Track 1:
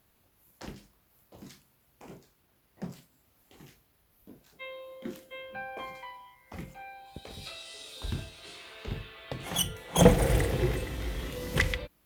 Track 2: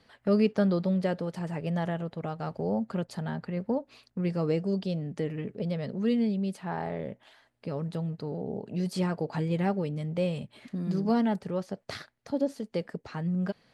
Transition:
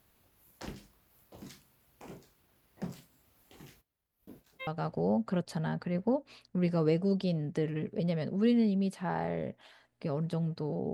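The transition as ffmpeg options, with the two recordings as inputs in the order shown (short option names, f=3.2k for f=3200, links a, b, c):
-filter_complex "[0:a]asplit=3[a][b][c];[a]afade=t=out:st=3.8:d=0.02[d];[b]agate=range=-33dB:threshold=-57dB:ratio=3:release=100:detection=peak,afade=t=in:st=3.8:d=0.02,afade=t=out:st=4.67:d=0.02[e];[c]afade=t=in:st=4.67:d=0.02[f];[d][e][f]amix=inputs=3:normalize=0,apad=whole_dur=10.93,atrim=end=10.93,atrim=end=4.672[g];[1:a]atrim=start=2.288:end=8.55[h];[g][h]acrossfade=d=0.004:c1=hsin:c2=hsin"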